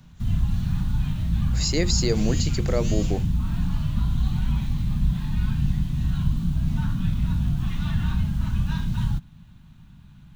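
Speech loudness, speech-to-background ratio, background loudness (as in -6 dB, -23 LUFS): -26.5 LUFS, -0.5 dB, -26.0 LUFS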